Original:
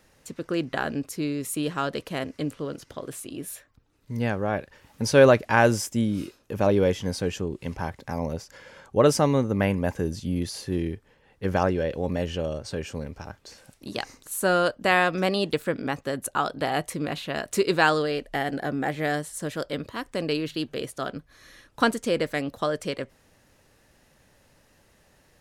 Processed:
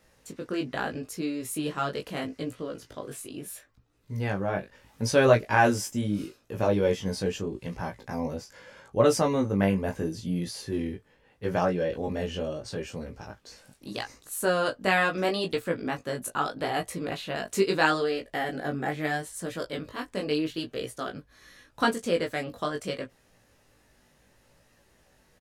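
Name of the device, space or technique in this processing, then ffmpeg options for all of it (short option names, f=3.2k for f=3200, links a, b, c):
double-tracked vocal: -filter_complex "[0:a]asplit=2[a][b];[b]adelay=16,volume=-8.5dB[c];[a][c]amix=inputs=2:normalize=0,flanger=delay=17.5:depth=3.2:speed=0.77"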